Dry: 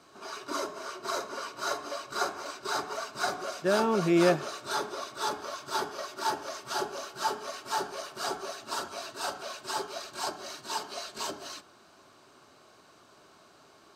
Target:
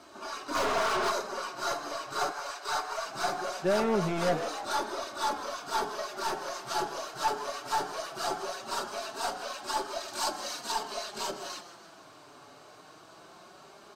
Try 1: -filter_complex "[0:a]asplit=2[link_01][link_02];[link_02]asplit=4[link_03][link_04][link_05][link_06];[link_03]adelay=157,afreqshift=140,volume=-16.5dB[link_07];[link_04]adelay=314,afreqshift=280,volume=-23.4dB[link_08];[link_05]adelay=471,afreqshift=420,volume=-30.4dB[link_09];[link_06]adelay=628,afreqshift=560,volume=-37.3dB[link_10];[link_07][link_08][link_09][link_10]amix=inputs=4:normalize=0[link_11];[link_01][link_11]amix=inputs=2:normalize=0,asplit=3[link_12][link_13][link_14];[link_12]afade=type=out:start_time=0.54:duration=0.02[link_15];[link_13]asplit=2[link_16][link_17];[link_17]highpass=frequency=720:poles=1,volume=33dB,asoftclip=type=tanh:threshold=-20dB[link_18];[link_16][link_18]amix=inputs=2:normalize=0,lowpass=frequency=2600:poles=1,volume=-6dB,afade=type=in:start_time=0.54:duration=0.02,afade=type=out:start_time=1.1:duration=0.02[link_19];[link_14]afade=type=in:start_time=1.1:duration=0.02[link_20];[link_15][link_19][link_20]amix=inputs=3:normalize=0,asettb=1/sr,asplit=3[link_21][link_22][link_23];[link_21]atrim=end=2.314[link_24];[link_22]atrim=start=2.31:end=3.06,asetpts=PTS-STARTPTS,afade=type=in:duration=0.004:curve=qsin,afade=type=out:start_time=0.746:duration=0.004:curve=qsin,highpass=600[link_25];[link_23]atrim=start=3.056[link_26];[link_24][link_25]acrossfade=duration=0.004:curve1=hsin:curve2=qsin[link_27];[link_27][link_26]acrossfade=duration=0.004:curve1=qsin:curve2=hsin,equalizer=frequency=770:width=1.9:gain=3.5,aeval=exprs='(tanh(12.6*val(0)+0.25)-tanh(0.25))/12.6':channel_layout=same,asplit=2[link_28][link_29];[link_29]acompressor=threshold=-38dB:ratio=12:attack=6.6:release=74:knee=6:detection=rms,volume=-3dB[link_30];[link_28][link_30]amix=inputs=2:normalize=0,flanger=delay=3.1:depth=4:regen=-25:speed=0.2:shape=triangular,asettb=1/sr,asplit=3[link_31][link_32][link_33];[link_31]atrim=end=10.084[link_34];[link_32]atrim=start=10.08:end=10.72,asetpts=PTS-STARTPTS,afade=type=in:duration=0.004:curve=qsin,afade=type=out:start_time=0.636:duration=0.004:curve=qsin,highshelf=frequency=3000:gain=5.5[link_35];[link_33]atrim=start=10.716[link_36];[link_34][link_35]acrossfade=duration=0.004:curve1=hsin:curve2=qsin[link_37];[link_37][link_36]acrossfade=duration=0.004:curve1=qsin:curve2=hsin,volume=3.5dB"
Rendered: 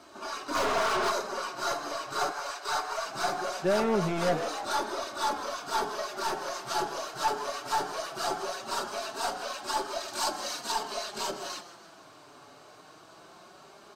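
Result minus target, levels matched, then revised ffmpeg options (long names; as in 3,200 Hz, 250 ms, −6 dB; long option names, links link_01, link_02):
downward compressor: peak gain reduction −8.5 dB
-filter_complex "[0:a]asplit=2[link_01][link_02];[link_02]asplit=4[link_03][link_04][link_05][link_06];[link_03]adelay=157,afreqshift=140,volume=-16.5dB[link_07];[link_04]adelay=314,afreqshift=280,volume=-23.4dB[link_08];[link_05]adelay=471,afreqshift=420,volume=-30.4dB[link_09];[link_06]adelay=628,afreqshift=560,volume=-37.3dB[link_10];[link_07][link_08][link_09][link_10]amix=inputs=4:normalize=0[link_11];[link_01][link_11]amix=inputs=2:normalize=0,asplit=3[link_12][link_13][link_14];[link_12]afade=type=out:start_time=0.54:duration=0.02[link_15];[link_13]asplit=2[link_16][link_17];[link_17]highpass=frequency=720:poles=1,volume=33dB,asoftclip=type=tanh:threshold=-20dB[link_18];[link_16][link_18]amix=inputs=2:normalize=0,lowpass=frequency=2600:poles=1,volume=-6dB,afade=type=in:start_time=0.54:duration=0.02,afade=type=out:start_time=1.1:duration=0.02[link_19];[link_14]afade=type=in:start_time=1.1:duration=0.02[link_20];[link_15][link_19][link_20]amix=inputs=3:normalize=0,asettb=1/sr,asplit=3[link_21][link_22][link_23];[link_21]atrim=end=2.314[link_24];[link_22]atrim=start=2.31:end=3.06,asetpts=PTS-STARTPTS,afade=type=in:duration=0.004:curve=qsin,afade=type=out:start_time=0.746:duration=0.004:curve=qsin,highpass=600[link_25];[link_23]atrim=start=3.056[link_26];[link_24][link_25]acrossfade=duration=0.004:curve1=hsin:curve2=qsin[link_27];[link_27][link_26]acrossfade=duration=0.004:curve1=qsin:curve2=hsin,equalizer=frequency=770:width=1.9:gain=3.5,aeval=exprs='(tanh(12.6*val(0)+0.25)-tanh(0.25))/12.6':channel_layout=same,asplit=2[link_28][link_29];[link_29]acompressor=threshold=-47.5dB:ratio=12:attack=6.6:release=74:knee=6:detection=rms,volume=-3dB[link_30];[link_28][link_30]amix=inputs=2:normalize=0,flanger=delay=3.1:depth=4:regen=-25:speed=0.2:shape=triangular,asettb=1/sr,asplit=3[link_31][link_32][link_33];[link_31]atrim=end=10.084[link_34];[link_32]atrim=start=10.08:end=10.72,asetpts=PTS-STARTPTS,afade=type=in:duration=0.004:curve=qsin,afade=type=out:start_time=0.636:duration=0.004:curve=qsin,highshelf=frequency=3000:gain=5.5[link_35];[link_33]atrim=start=10.716[link_36];[link_34][link_35]acrossfade=duration=0.004:curve1=hsin:curve2=qsin[link_37];[link_37][link_36]acrossfade=duration=0.004:curve1=qsin:curve2=hsin,volume=3.5dB"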